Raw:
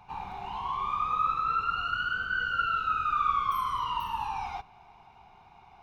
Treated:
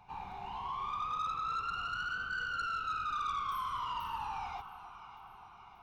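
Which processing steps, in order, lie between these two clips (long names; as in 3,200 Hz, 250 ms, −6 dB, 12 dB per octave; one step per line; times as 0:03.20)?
delay that swaps between a low-pass and a high-pass 292 ms, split 1,000 Hz, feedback 75%, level −13 dB
soft clipping −26 dBFS, distortion −13 dB
level −5 dB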